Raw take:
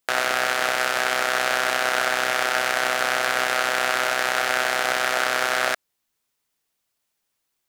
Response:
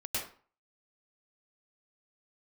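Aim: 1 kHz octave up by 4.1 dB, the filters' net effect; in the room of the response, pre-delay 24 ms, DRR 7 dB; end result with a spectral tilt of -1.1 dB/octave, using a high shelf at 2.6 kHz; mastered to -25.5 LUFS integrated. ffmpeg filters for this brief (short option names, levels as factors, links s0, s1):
-filter_complex "[0:a]equalizer=f=1000:t=o:g=7.5,highshelf=f=2600:g=-7,asplit=2[s0][s1];[1:a]atrim=start_sample=2205,adelay=24[s2];[s1][s2]afir=irnorm=-1:irlink=0,volume=0.282[s3];[s0][s3]amix=inputs=2:normalize=0,volume=0.501"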